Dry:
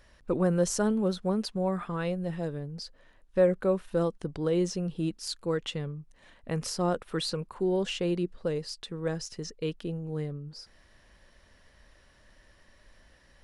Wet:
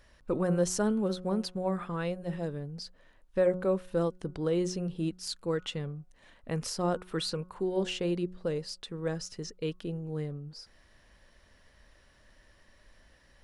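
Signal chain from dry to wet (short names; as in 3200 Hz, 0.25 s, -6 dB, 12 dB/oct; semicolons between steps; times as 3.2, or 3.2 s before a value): de-hum 182.6 Hz, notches 8; gain -1.5 dB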